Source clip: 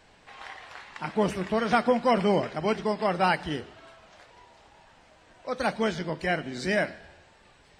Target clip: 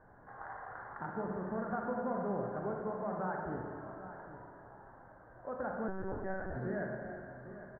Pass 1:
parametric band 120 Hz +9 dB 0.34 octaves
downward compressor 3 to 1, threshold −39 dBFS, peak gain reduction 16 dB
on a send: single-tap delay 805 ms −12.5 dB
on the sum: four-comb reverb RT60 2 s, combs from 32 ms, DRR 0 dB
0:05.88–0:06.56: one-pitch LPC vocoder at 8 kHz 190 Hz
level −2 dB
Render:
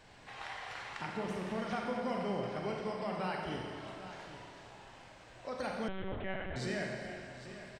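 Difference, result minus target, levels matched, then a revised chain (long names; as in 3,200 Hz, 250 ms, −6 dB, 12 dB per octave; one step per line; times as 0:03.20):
2,000 Hz band +3.0 dB
elliptic low-pass filter 1,600 Hz, stop band 40 dB
parametric band 120 Hz +9 dB 0.34 octaves
downward compressor 3 to 1, threshold −39 dBFS, peak gain reduction 15.5 dB
on a send: single-tap delay 805 ms −12.5 dB
on the sum: four-comb reverb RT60 2 s, combs from 32 ms, DRR 0 dB
0:05.88–0:06.56: one-pitch LPC vocoder at 8 kHz 190 Hz
level −2 dB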